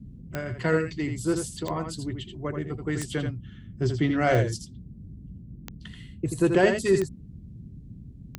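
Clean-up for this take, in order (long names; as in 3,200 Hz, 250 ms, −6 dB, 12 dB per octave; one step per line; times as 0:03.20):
click removal
noise reduction from a noise print 26 dB
echo removal 82 ms −6.5 dB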